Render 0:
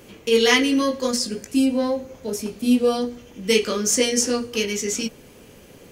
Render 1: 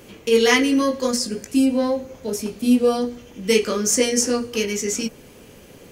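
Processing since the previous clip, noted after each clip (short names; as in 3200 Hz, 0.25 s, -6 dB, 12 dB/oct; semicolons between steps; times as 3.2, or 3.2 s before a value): dynamic EQ 3500 Hz, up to -5 dB, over -38 dBFS, Q 1.6; gain +1.5 dB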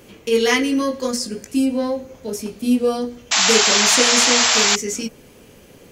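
painted sound noise, 3.31–4.76, 600–7700 Hz -15 dBFS; gain -1 dB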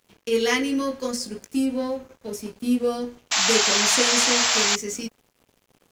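crossover distortion -42.5 dBFS; gain -4.5 dB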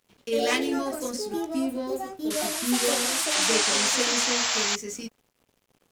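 echoes that change speed 0.108 s, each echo +4 st, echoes 2; gain -5 dB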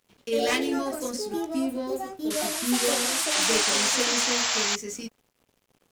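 one-sided fold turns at -16 dBFS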